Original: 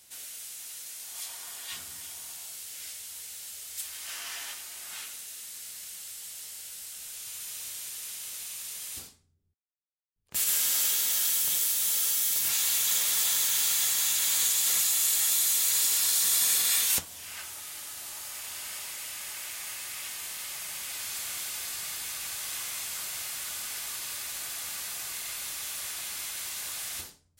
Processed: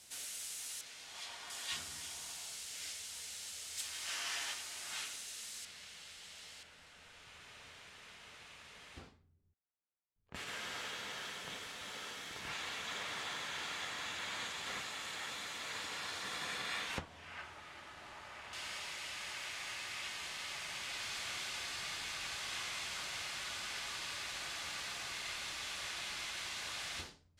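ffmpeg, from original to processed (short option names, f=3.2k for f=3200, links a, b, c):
-af "asetnsamples=n=441:p=0,asendcmd='0.81 lowpass f 3800;1.5 lowpass f 7000;5.65 lowpass f 3500;6.63 lowpass f 1900;18.53 lowpass f 4200',lowpass=9.3k"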